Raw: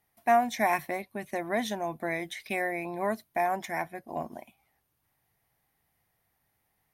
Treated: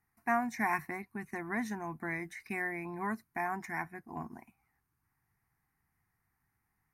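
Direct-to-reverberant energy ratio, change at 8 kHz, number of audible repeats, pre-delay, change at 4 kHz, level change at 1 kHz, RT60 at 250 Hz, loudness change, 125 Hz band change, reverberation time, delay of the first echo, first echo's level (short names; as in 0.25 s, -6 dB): none, -8.5 dB, none, none, -16.5 dB, -7.5 dB, none, -6.0 dB, -1.0 dB, none, none, none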